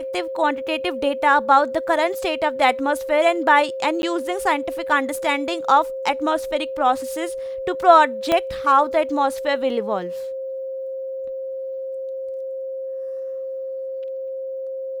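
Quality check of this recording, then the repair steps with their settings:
whine 530 Hz -26 dBFS
4.02–4.03 s: dropout 11 ms
8.32 s: pop -6 dBFS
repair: de-click; band-stop 530 Hz, Q 30; interpolate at 4.02 s, 11 ms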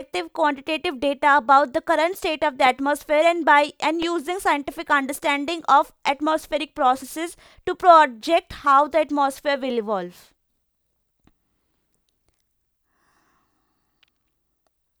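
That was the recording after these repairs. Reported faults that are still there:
nothing left

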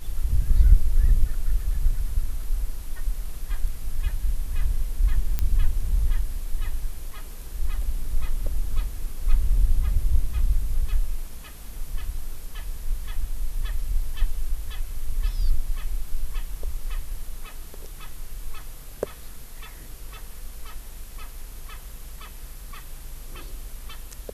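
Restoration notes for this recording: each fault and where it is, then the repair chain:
5.39 s: pop -11 dBFS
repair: de-click

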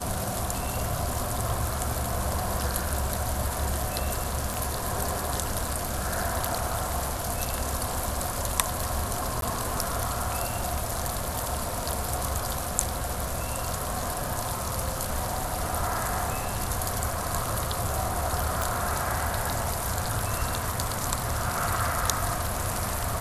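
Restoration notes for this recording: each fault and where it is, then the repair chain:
4.54 s: pop
9.41–9.42 s: dropout 12 ms
18.62 s: pop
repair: de-click; interpolate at 9.41 s, 12 ms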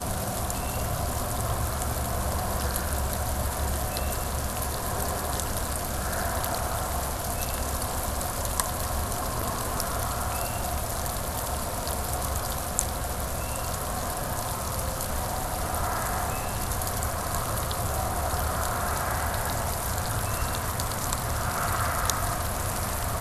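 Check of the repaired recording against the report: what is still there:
4.54 s: pop

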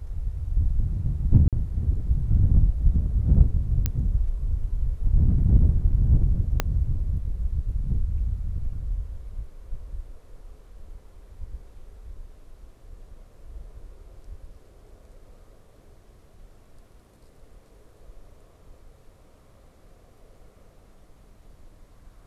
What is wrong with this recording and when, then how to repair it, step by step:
1.48–1.53 s: dropout 47 ms
3.86 s: pop -9 dBFS
6.60 s: pop -7 dBFS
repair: de-click; interpolate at 1.48 s, 47 ms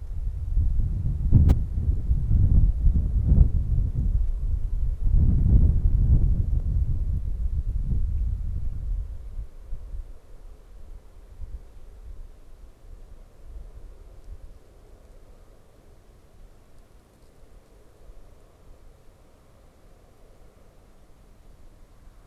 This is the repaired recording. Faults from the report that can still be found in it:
6.60 s: pop

